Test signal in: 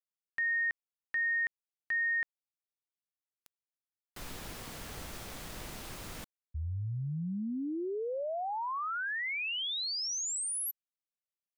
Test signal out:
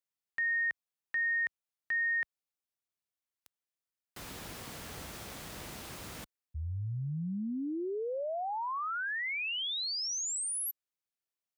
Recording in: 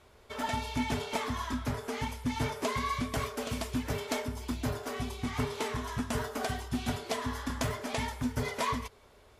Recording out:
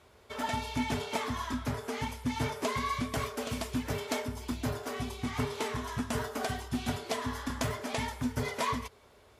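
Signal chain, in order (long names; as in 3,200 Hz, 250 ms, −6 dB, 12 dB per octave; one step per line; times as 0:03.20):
high-pass filter 58 Hz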